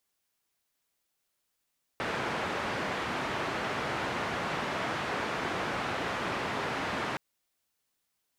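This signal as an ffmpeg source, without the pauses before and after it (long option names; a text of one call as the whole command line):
ffmpeg -f lavfi -i "anoisesrc=color=white:duration=5.17:sample_rate=44100:seed=1,highpass=frequency=93,lowpass=frequency=1600,volume=-17dB" out.wav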